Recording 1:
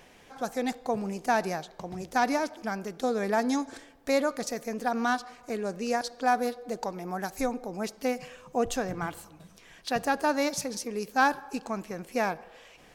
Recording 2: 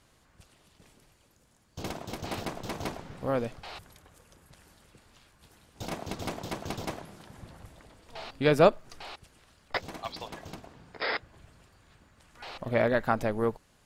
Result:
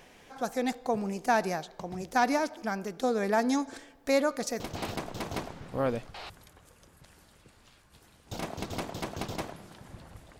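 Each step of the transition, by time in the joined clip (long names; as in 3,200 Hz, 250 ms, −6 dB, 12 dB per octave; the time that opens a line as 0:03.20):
recording 1
0:04.60: continue with recording 2 from 0:02.09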